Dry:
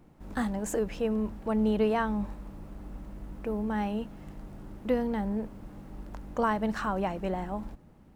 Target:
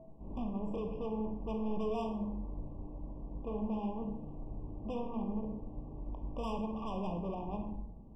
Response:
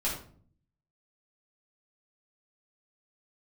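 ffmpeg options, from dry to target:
-filter_complex "[0:a]aeval=exprs='val(0)+0.00282*sin(2*PI*650*n/s)':c=same,lowpass=1000,asoftclip=type=tanh:threshold=0.0168,asplit=2[s0][s1];[1:a]atrim=start_sample=2205,asetrate=32634,aresample=44100,adelay=33[s2];[s1][s2]afir=irnorm=-1:irlink=0,volume=0.224[s3];[s0][s3]amix=inputs=2:normalize=0,afftfilt=real='re*eq(mod(floor(b*sr/1024/1200),2),0)':imag='im*eq(mod(floor(b*sr/1024/1200),2),0)':win_size=1024:overlap=0.75,volume=0.891"

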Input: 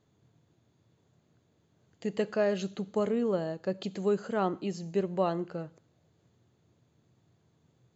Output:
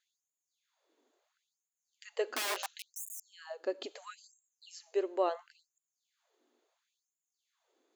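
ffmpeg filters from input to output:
-filter_complex "[0:a]asettb=1/sr,asplit=3[s0][s1][s2];[s0]atrim=end=2.254[s3];[s1]atrim=start=2.25:end=3.2,asetpts=PTS-STARTPTS,afade=t=in:d=0.004:c=qsin,afade=t=out:st=0.946:d=0.004:c=qsin,aeval=exprs='(mod(23.7*val(0)+1,2)-1)/23.7':c=same[s4];[s2]atrim=start=3.196[s5];[s3][s4]acrossfade=d=0.004:c1=hsin:c2=qsin[s6];[s6][s5]acrossfade=d=0.004:c1=qsin:c2=hsin,afftfilt=real='re*gte(b*sr/1024,220*pow(6700/220,0.5+0.5*sin(2*PI*0.73*pts/sr)))':imag='im*gte(b*sr/1024,220*pow(6700/220,0.5+0.5*sin(2*PI*0.73*pts/sr)))':win_size=1024:overlap=0.75,volume=0.841"

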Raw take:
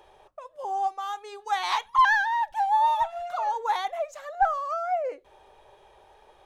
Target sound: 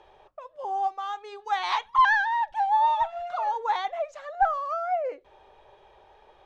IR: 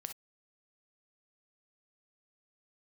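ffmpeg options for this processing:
-af "lowpass=4600"

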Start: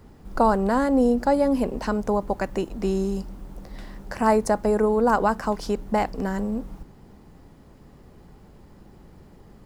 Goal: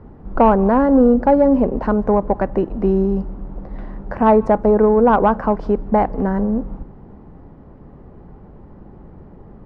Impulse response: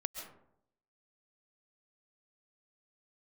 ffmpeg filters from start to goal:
-filter_complex "[0:a]lowpass=1200,acontrast=88,asplit=2[s0][s1];[1:a]atrim=start_sample=2205,afade=t=out:st=0.27:d=0.01,atrim=end_sample=12348,asetrate=37044,aresample=44100[s2];[s1][s2]afir=irnorm=-1:irlink=0,volume=0.119[s3];[s0][s3]amix=inputs=2:normalize=0"

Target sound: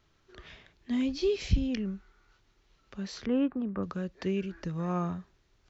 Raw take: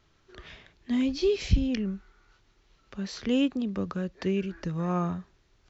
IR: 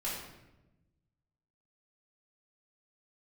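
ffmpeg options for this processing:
-filter_complex "[0:a]asettb=1/sr,asplit=3[s0][s1][s2];[s0]atrim=end=3.264[s3];[s1]atrim=start=3.26:end=3.83,asetpts=PTS-STARTPTS,afade=t=in:d=0.004:c=qsin,afade=t=out:st=0.566:d=0.004:c=qsin,lowpass=f=1400:t=q:w=1.8[s4];[s2]atrim=start=3.826[s5];[s3][s4]acrossfade=d=0.004:c1=hsin:c2=qsin[s6];[s6][s5]acrossfade=d=0.004:c1=qsin:c2=hsin,volume=0.708"

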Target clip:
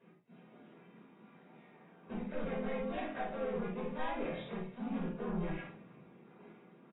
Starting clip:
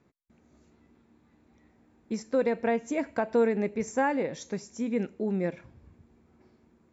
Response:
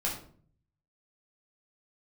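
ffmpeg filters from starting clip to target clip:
-filter_complex "[0:a]highpass=f=180:w=0.5412,highpass=f=180:w=1.3066,aecho=1:1:4.9:0.71,bandreject=f=231.2:t=h:w=4,bandreject=f=462.4:t=h:w=4,bandreject=f=693.6:t=h:w=4,bandreject=f=924.8:t=h:w=4,bandreject=f=1156:t=h:w=4,acompressor=threshold=0.0224:ratio=12,asoftclip=type=tanh:threshold=0.01,afreqshift=-23,asplit=2[s0][s1];[s1]asetrate=52444,aresample=44100,atempo=0.840896,volume=1[s2];[s0][s2]amix=inputs=2:normalize=0,aecho=1:1:37|53:0.355|0.355[s3];[1:a]atrim=start_sample=2205,afade=t=out:st=0.16:d=0.01,atrim=end_sample=7497[s4];[s3][s4]afir=irnorm=-1:irlink=0,volume=0.596" -ar 16000 -c:a aac -b:a 16k

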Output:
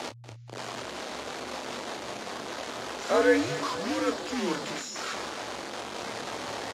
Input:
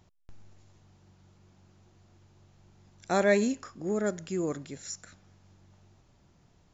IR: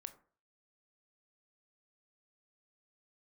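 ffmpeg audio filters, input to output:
-filter_complex "[0:a]aeval=exprs='val(0)+0.5*0.0335*sgn(val(0))':c=same,acrossover=split=1900[s0][s1];[s0]acrusher=bits=5:mix=0:aa=0.000001[s2];[s1]alimiter=level_in=2.51:limit=0.0631:level=0:latency=1,volume=0.398[s3];[s2][s3]amix=inputs=2:normalize=0,afreqshift=-120,highpass=370,lowpass=5700,asplit=2[s4][s5];[s5]adelay=28,volume=0.447[s6];[s4][s6]amix=inputs=2:normalize=0,asplit=2[s7][s8];[s8]aecho=0:1:239|478|717|956|1195:0.178|0.0996|0.0558|0.0312|0.0175[s9];[s7][s9]amix=inputs=2:normalize=0,volume=1.41" -ar 48000 -c:a libvorbis -b:a 48k

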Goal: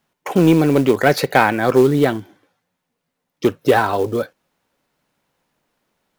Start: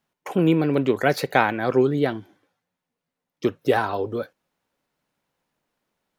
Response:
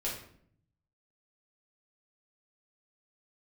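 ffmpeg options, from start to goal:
-af "acontrast=85,acrusher=bits=6:mode=log:mix=0:aa=0.000001"

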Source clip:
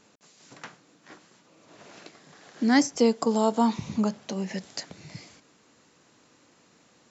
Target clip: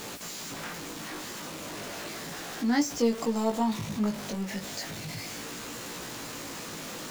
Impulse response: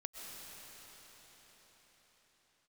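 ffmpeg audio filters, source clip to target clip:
-af "aeval=exprs='val(0)+0.5*0.0473*sgn(val(0))':c=same,flanger=delay=17:depth=2.7:speed=0.34,volume=0.631"

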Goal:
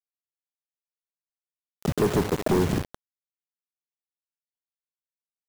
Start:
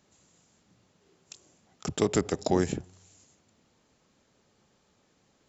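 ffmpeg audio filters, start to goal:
-filter_complex "[0:a]asplit=2[s0][s1];[s1]acompressor=threshold=0.0126:ratio=4,volume=1[s2];[s0][s2]amix=inputs=2:normalize=0,lowpass=f=4000:p=1,tiltshelf=f=1300:g=9.5,aecho=1:1:215:0.0841,acrusher=bits=4:mix=0:aa=0.000001,asoftclip=type=tanh:threshold=0.158"

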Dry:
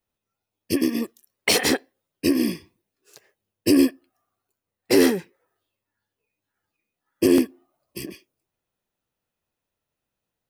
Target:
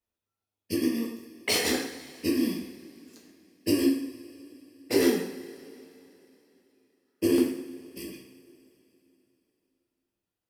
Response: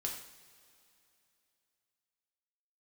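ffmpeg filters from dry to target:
-filter_complex "[1:a]atrim=start_sample=2205,asetrate=41013,aresample=44100[s0];[0:a][s0]afir=irnorm=-1:irlink=0,volume=0.447"

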